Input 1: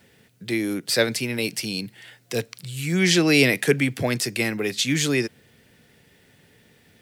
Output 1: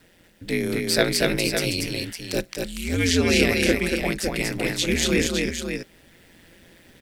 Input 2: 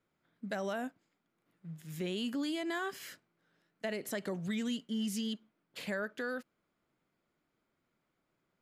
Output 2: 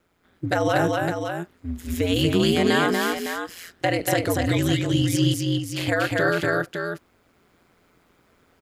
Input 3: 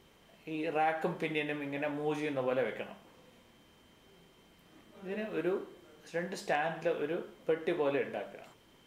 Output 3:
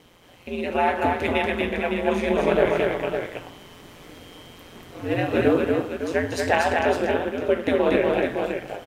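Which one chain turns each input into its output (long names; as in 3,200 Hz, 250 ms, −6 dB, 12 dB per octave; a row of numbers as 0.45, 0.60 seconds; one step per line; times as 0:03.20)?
ring modulation 87 Hz
multi-tap delay 237/558 ms −3/−7.5 dB
speech leveller within 5 dB 2 s
loudness normalisation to −23 LKFS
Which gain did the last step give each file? +0.5, +16.0, +13.0 decibels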